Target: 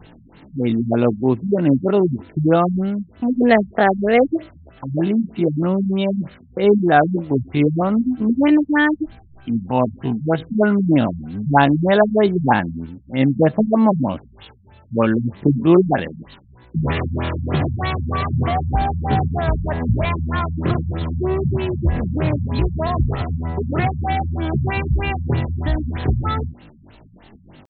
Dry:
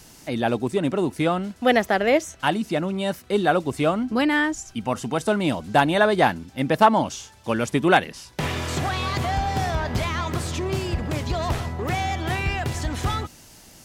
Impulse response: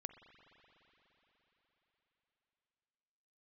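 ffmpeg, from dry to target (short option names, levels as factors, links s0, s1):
-filter_complex "[0:a]asplit=2[s0][s1];[s1]volume=4.22,asoftclip=hard,volume=0.237,volume=0.282[s2];[s0][s2]amix=inputs=2:normalize=0,atempo=0.5,equalizer=f=200:t=o:w=2.9:g=3.5,afftfilt=real='re*lt(b*sr/1024,210*pow(4400/210,0.5+0.5*sin(2*PI*3.2*pts/sr)))':imag='im*lt(b*sr/1024,210*pow(4400/210,0.5+0.5*sin(2*PI*3.2*pts/sr)))':win_size=1024:overlap=0.75,volume=1.33"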